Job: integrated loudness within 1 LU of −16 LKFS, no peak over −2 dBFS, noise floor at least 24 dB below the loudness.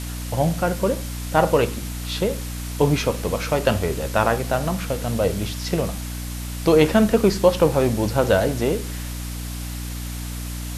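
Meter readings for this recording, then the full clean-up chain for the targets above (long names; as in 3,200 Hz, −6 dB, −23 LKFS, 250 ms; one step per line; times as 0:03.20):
mains hum 60 Hz; hum harmonics up to 300 Hz; level of the hum −28 dBFS; background noise floor −30 dBFS; target noise floor −46 dBFS; integrated loudness −22.0 LKFS; sample peak −3.5 dBFS; target loudness −16.0 LKFS
→ hum removal 60 Hz, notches 5
broadband denoise 16 dB, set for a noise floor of −30 dBFS
level +6 dB
brickwall limiter −2 dBFS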